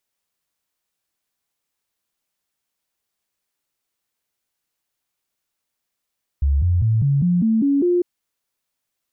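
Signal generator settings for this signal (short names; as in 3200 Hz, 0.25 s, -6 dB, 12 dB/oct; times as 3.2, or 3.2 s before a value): stepped sine 70.1 Hz up, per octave 3, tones 8, 0.20 s, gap 0.00 s -14 dBFS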